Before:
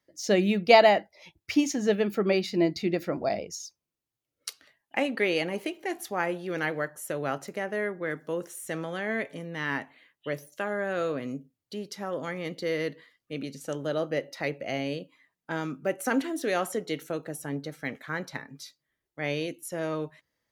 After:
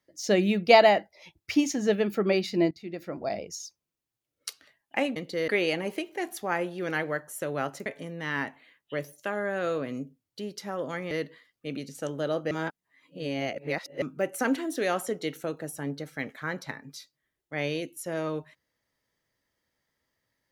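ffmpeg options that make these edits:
ffmpeg -i in.wav -filter_complex "[0:a]asplit=8[link_01][link_02][link_03][link_04][link_05][link_06][link_07][link_08];[link_01]atrim=end=2.71,asetpts=PTS-STARTPTS,afade=type=out:start_time=2.706:duration=0.004:curve=hsin:silence=0.11885[link_09];[link_02]atrim=start=2.71:end=5.162,asetpts=PTS-STARTPTS,afade=type=in:duration=0.89:silence=0.11885[link_10];[link_03]atrim=start=12.448:end=12.772[link_11];[link_04]atrim=start=5.158:end=7.542[link_12];[link_05]atrim=start=9.198:end=12.452[link_13];[link_06]atrim=start=12.768:end=14.172[link_14];[link_07]atrim=start=14.168:end=15.682,asetpts=PTS-STARTPTS,areverse[link_15];[link_08]atrim=start=15.678[link_16];[link_09][link_10]concat=n=2:v=0:a=1[link_17];[link_17][link_11]acrossfade=duration=0.004:curve1=hsin:curve2=hsin[link_18];[link_18][link_12]acrossfade=duration=0.004:curve1=hsin:curve2=hsin[link_19];[link_19][link_13]acrossfade=duration=0.004:curve1=hsin:curve2=hsin[link_20];[link_20][link_14]acrossfade=duration=0.004:curve1=hsin:curve2=hsin[link_21];[link_21][link_15]acrossfade=duration=0.004:curve1=hsin:curve2=hsin[link_22];[link_22][link_16]acrossfade=duration=0.004:curve1=hsin:curve2=hsin" out.wav

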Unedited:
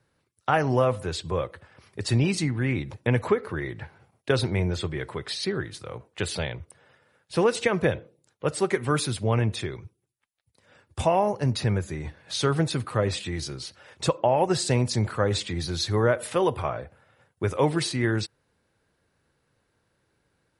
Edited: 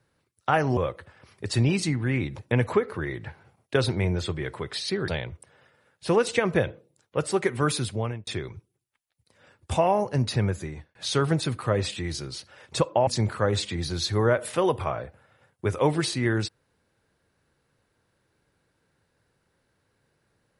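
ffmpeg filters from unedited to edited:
ffmpeg -i in.wav -filter_complex "[0:a]asplit=6[link_01][link_02][link_03][link_04][link_05][link_06];[link_01]atrim=end=0.772[link_07];[link_02]atrim=start=1.318:end=5.632[link_08];[link_03]atrim=start=6.358:end=9.55,asetpts=PTS-STARTPTS,afade=type=out:start_time=2.762:duration=0.43[link_09];[link_04]atrim=start=9.55:end=12.23,asetpts=PTS-STARTPTS,afade=type=in:duration=0.004:curve=hsin,afade=type=out:start_time=2.34:duration=0.34[link_10];[link_05]atrim=start=12.23:end=14.352,asetpts=PTS-STARTPTS,afade=type=in:duration=0.004:curve=hsin[link_11];[link_06]atrim=start=14.848[link_12];[link_07][link_08]acrossfade=duration=0.004:curve1=hsin:curve2=hsin[link_13];[link_09][link_10][link_11]concat=n=3:v=0:a=1[link_14];[link_13][link_14]acrossfade=duration=0.004:curve1=hsin:curve2=hsin[link_15];[link_15][link_12]acrossfade=duration=0.004:curve1=hsin:curve2=hsin" out.wav

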